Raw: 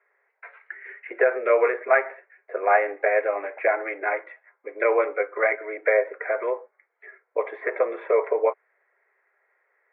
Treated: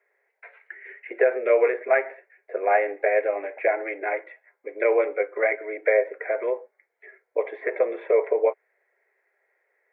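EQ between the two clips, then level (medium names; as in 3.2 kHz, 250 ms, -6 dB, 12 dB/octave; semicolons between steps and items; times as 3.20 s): peaking EQ 1.2 kHz -11.5 dB 0.88 oct; +2.0 dB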